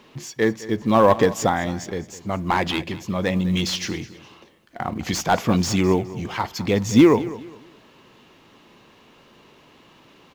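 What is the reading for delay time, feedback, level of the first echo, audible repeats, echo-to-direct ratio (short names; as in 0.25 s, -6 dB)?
0.208 s, 30%, -17.0 dB, 2, -16.5 dB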